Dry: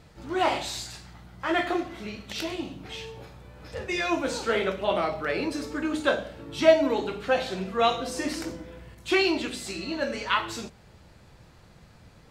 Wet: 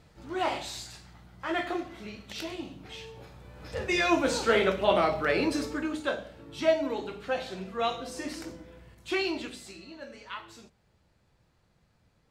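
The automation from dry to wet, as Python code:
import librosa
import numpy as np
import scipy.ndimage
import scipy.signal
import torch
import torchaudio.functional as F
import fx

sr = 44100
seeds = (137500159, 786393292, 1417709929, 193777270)

y = fx.gain(x, sr, db=fx.line((3.09, -5.0), (3.87, 2.0), (5.6, 2.0), (6.02, -6.5), (9.44, -6.5), (9.94, -15.0)))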